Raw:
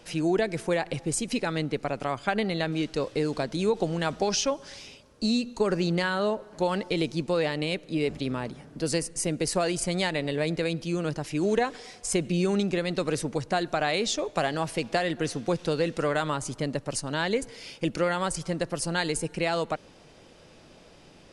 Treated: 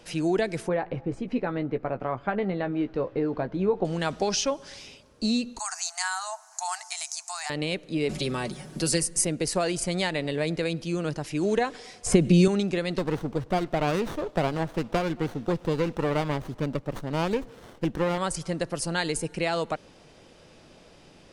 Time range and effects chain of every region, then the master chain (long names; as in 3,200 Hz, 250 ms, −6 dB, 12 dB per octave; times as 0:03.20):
0:00.68–0:03.85: low-pass filter 1,500 Hz + double-tracking delay 16 ms −9 dB
0:05.59–0:07.50: linear-phase brick-wall high-pass 650 Hz + high shelf with overshoot 4,700 Hz +12.5 dB, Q 3
0:08.09–0:09.25: high-shelf EQ 7,200 Hz +10 dB + comb filter 5.4 ms, depth 66% + multiband upward and downward compressor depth 40%
0:12.06–0:12.48: low-shelf EQ 410 Hz +9.5 dB + multiband upward and downward compressor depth 100%
0:12.98–0:18.18: high-frequency loss of the air 56 metres + windowed peak hold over 17 samples
whole clip: no processing